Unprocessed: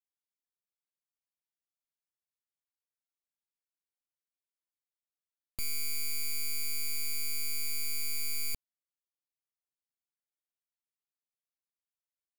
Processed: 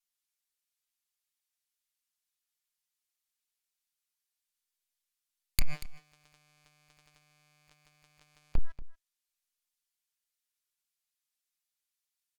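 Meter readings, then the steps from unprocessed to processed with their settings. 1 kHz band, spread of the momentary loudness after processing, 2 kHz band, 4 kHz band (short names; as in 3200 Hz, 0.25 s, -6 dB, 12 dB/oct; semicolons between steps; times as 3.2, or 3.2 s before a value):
+3.0 dB, 17 LU, -8.5 dB, -9.5 dB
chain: minimum comb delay 5.6 ms; passive tone stack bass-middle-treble 10-0-10; de-hum 328.7 Hz, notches 6; treble ducked by the level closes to 390 Hz, closed at -39.5 dBFS; bell 200 Hz -12 dB 2.3 oct; in parallel at -0.5 dB: limiter -43.5 dBFS, peak gain reduction 10 dB; on the sum: sample leveller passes 5; echo 0.236 s -16 dB; gain +15 dB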